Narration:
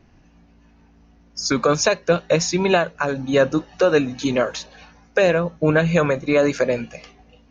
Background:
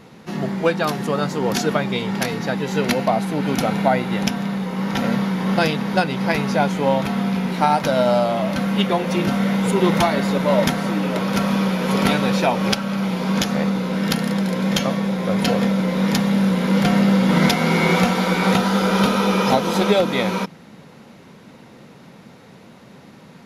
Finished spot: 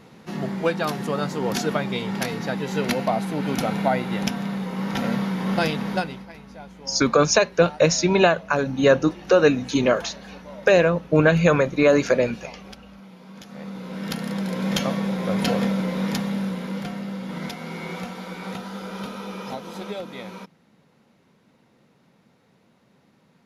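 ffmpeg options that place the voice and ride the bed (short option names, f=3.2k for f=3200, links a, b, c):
-filter_complex "[0:a]adelay=5500,volume=0.5dB[a];[1:a]volume=15.5dB,afade=t=out:st=5.89:d=0.37:silence=0.112202,afade=t=in:st=13.43:d=1.4:silence=0.105925,afade=t=out:st=15.59:d=1.37:silence=0.237137[b];[a][b]amix=inputs=2:normalize=0"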